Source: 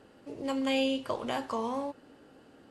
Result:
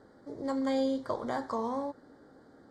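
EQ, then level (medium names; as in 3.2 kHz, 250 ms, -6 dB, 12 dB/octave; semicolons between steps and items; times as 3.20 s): Butterworth band-stop 2.7 kHz, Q 1.6; distance through air 62 m; 0.0 dB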